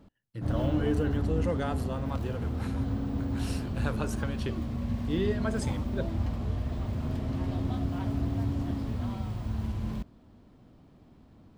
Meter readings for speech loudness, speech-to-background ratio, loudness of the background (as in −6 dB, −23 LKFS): −35.0 LKFS, −2.5 dB, −32.5 LKFS